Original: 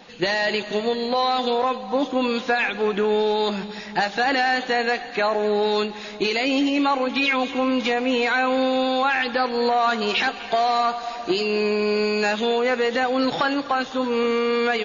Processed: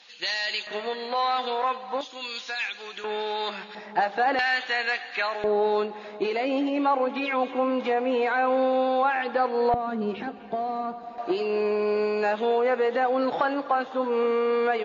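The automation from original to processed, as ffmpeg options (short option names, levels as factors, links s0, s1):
-af "asetnsamples=n=441:p=0,asendcmd='0.67 bandpass f 1500;2.01 bandpass f 5500;3.04 bandpass f 1800;3.75 bandpass f 740;4.39 bandpass f 2300;5.44 bandpass f 650;9.74 bandpass f 210;11.18 bandpass f 680',bandpass=f=4300:t=q:w=0.83:csg=0"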